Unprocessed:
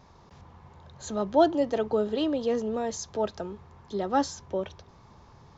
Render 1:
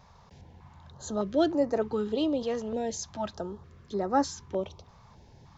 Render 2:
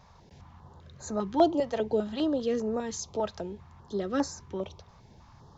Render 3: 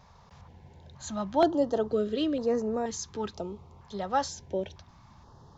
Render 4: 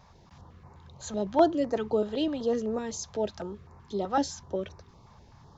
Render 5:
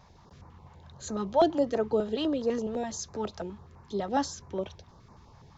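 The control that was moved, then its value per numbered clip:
step-sequenced notch, rate: 3.3 Hz, 5 Hz, 2.1 Hz, 7.9 Hz, 12 Hz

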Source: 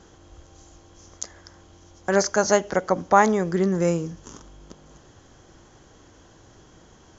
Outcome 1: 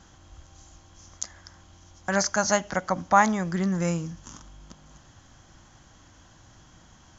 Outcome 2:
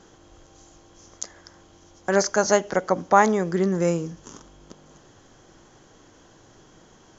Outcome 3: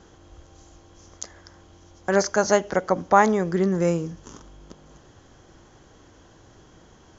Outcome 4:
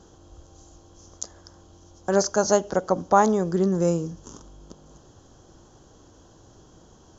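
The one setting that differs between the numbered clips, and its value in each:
peaking EQ, frequency: 420 Hz, 65 Hz, 14 kHz, 2.1 kHz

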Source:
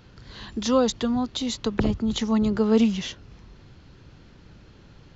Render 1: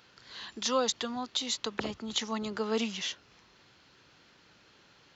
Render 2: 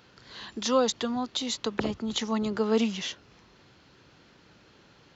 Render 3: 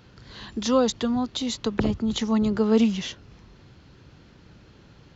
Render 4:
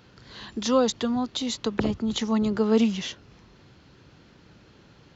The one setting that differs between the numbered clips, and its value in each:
high-pass, cutoff frequency: 1.2 kHz, 470 Hz, 65 Hz, 170 Hz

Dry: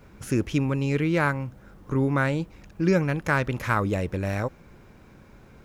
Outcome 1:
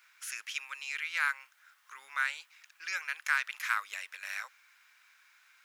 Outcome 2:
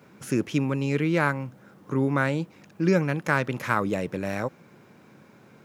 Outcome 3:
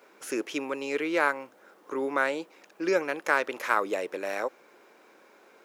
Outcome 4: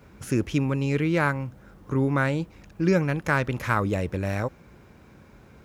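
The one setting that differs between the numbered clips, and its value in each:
high-pass, cutoff frequency: 1.5 kHz, 130 Hz, 360 Hz, 40 Hz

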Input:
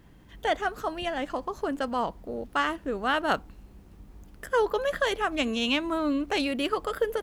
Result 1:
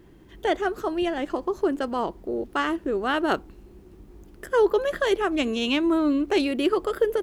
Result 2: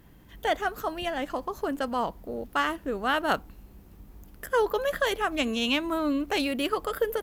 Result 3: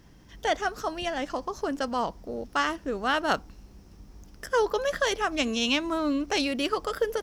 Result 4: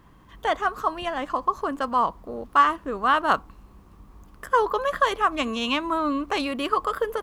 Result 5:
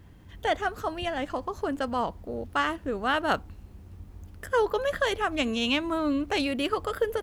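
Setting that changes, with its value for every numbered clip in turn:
peaking EQ, frequency: 360 Hz, 14 kHz, 5.5 kHz, 1.1 kHz, 87 Hz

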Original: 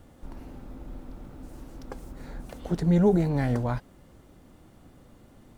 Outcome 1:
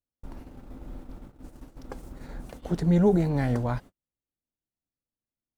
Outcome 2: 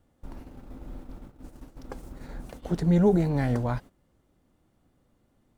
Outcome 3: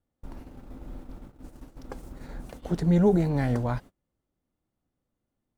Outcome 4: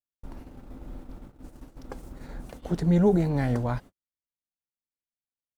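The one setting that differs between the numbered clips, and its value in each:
gate, range: -45 dB, -14 dB, -29 dB, -58 dB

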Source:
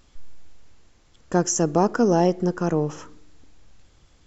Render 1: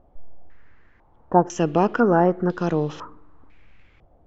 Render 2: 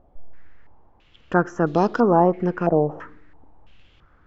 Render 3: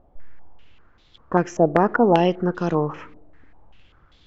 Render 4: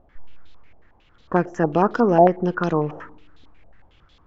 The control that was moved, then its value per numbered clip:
step-sequenced low-pass, rate: 2 Hz, 3 Hz, 5.1 Hz, 11 Hz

